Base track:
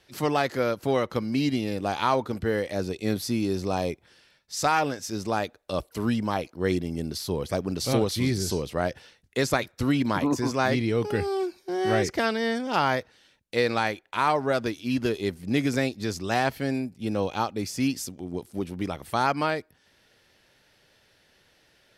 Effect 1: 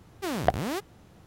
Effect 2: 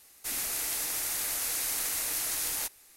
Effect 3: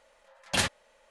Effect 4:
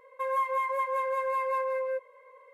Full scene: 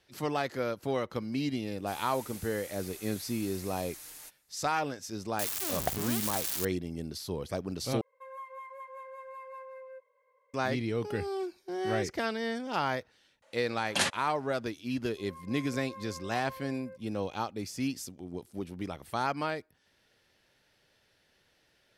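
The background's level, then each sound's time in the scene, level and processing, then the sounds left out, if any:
base track -7 dB
1.62 add 2 -16.5 dB + comb 6.6 ms, depth 47%
5.39 add 1 -9 dB + switching spikes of -12 dBFS
8.01 replace with 4 -16 dB
13.42 add 3 -1.5 dB + HPF 150 Hz
14.98 add 4 -17.5 dB + opening faded in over 0.74 s

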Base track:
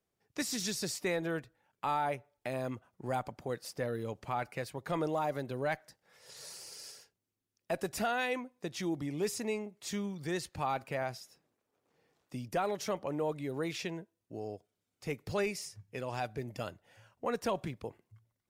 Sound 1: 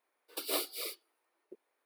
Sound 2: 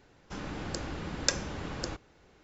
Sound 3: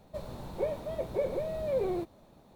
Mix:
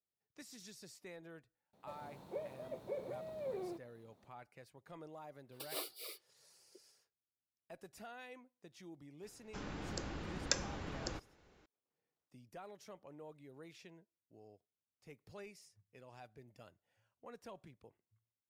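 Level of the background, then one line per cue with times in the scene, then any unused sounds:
base track -19 dB
1.73 add 3 -11.5 dB + HPF 140 Hz
5.23 add 1 -9 dB + HPF 290 Hz
9.23 add 2 -6.5 dB

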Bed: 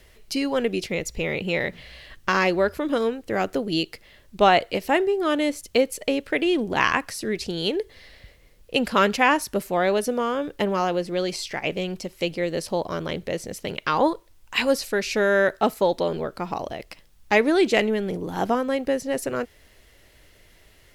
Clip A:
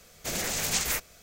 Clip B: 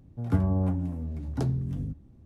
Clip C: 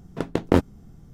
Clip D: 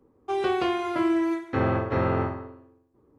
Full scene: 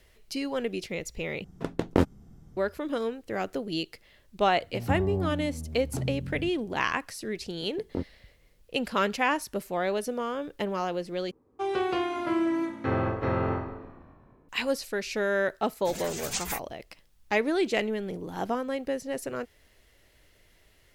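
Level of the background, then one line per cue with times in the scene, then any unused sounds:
bed -7 dB
1.44 replace with C -4.5 dB
4.56 add B -4.5 dB
7.43 add C -15.5 dB + spectral expander 1.5:1
11.31 replace with D -3 dB + frequency-shifting echo 0.194 s, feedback 60%, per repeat -56 Hz, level -18.5 dB
15.6 add A -2 dB + per-bin expansion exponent 2

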